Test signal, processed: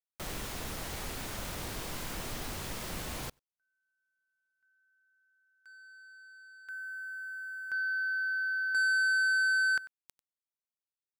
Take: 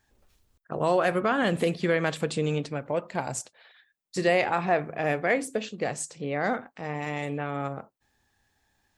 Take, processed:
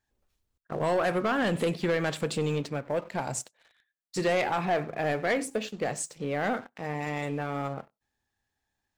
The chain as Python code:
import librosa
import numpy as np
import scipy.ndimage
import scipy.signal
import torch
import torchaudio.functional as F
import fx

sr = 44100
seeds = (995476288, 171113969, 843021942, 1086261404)

p1 = x + fx.echo_single(x, sr, ms=95, db=-24.0, dry=0)
p2 = fx.leveller(p1, sr, passes=2)
y = p2 * librosa.db_to_amplitude(-7.5)